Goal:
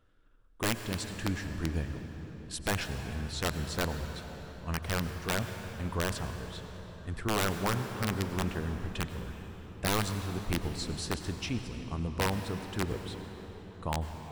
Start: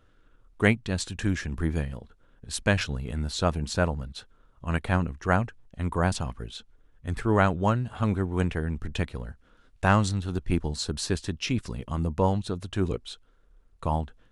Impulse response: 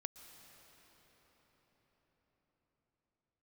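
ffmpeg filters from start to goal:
-filter_complex "[0:a]aeval=exprs='(mod(5.31*val(0)+1,2)-1)/5.31':channel_layout=same,bandreject=frequency=6500:width=23[link_01];[1:a]atrim=start_sample=2205,asetrate=57330,aresample=44100[link_02];[link_01][link_02]afir=irnorm=-1:irlink=0"

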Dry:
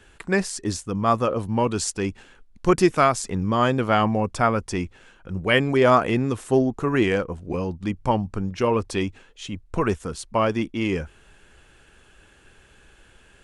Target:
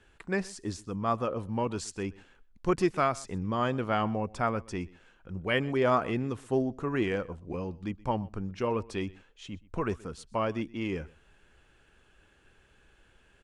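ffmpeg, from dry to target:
ffmpeg -i in.wav -af "highshelf=frequency=7000:gain=-9,aecho=1:1:125:0.075,volume=-8.5dB" out.wav

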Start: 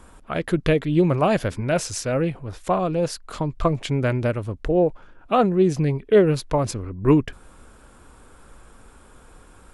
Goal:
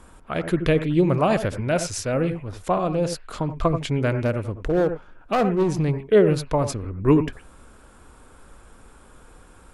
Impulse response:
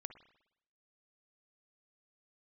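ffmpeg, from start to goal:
-filter_complex "[0:a]asettb=1/sr,asplit=3[link_01][link_02][link_03];[link_01]atrim=end=4.114[link_04];[link_02]atrim=start=4.11:end=6,asetpts=PTS-STARTPTS,afade=type=in:duration=0.004:curve=qsin,afade=type=out:start_time=1.886:duration=0.004:curve=qsin,asoftclip=type=hard:threshold=-15.5dB[link_05];[link_03]atrim=start=5.996[link_06];[link_04][link_05]acrossfade=duration=0.004:curve1=hsin:curve2=qsin[link_07];[link_07][link_06]acrossfade=duration=0.004:curve1=qsin:curve2=hsin[link_08];[1:a]atrim=start_sample=2205,atrim=end_sample=4410,asetrate=29547,aresample=44100[link_09];[link_08][link_09]afir=irnorm=-1:irlink=0,volume=2.5dB"

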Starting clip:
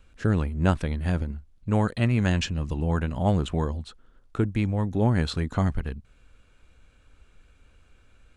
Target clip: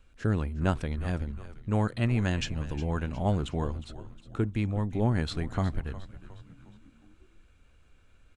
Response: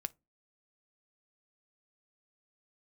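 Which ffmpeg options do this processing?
-filter_complex "[0:a]asplit=5[link_01][link_02][link_03][link_04][link_05];[link_02]adelay=360,afreqshift=-100,volume=-14.5dB[link_06];[link_03]adelay=720,afreqshift=-200,volume=-21.1dB[link_07];[link_04]adelay=1080,afreqshift=-300,volume=-27.6dB[link_08];[link_05]adelay=1440,afreqshift=-400,volume=-34.2dB[link_09];[link_01][link_06][link_07][link_08][link_09]amix=inputs=5:normalize=0,asplit=2[link_10][link_11];[1:a]atrim=start_sample=2205[link_12];[link_11][link_12]afir=irnorm=-1:irlink=0,volume=-1dB[link_13];[link_10][link_13]amix=inputs=2:normalize=0,volume=-9dB"

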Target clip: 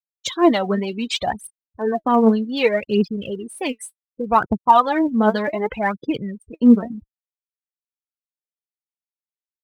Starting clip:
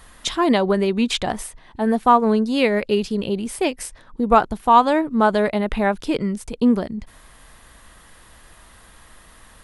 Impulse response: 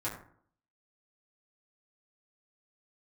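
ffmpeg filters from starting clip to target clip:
-af "highpass=frequency=71:width=0.5412,highpass=frequency=71:width=1.3066,afftfilt=real='re*gte(hypot(re,im),0.0447)':imag='im*gte(hypot(re,im),0.0447)':win_size=1024:overlap=0.75,aphaser=in_gain=1:out_gain=1:delay=4.6:decay=0.7:speed=0.66:type=triangular,volume=-3dB"

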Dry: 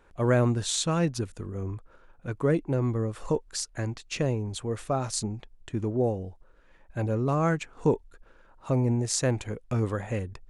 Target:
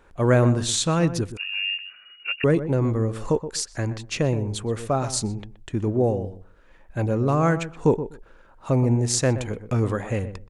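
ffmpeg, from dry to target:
ffmpeg -i in.wav -filter_complex "[0:a]asplit=2[link_01][link_02];[link_02]adelay=124,lowpass=frequency=1200:poles=1,volume=-11dB,asplit=2[link_03][link_04];[link_04]adelay=124,lowpass=frequency=1200:poles=1,volume=0.16[link_05];[link_01][link_03][link_05]amix=inputs=3:normalize=0,asettb=1/sr,asplit=3[link_06][link_07][link_08];[link_06]atrim=end=1.374[link_09];[link_07]atrim=start=1.37:end=2.44,asetpts=PTS-STARTPTS,afade=type=in:duration=0.004:curve=qsin,afade=type=out:start_time=1.066:duration=0.004:curve=qsin,lowpass=frequency=2500:width_type=q:width=0.5098,lowpass=frequency=2500:width_type=q:width=0.6013,lowpass=frequency=2500:width_type=q:width=0.9,lowpass=frequency=2500:width_type=q:width=2.563,afreqshift=-2900[link_10];[link_08]atrim=start=2.436[link_11];[link_09][link_10]acrossfade=duration=0.004:curve1=hsin:curve2=qsin[link_12];[link_12][link_11]acrossfade=duration=0.004:curve1=qsin:curve2=hsin,volume=4.5dB" out.wav

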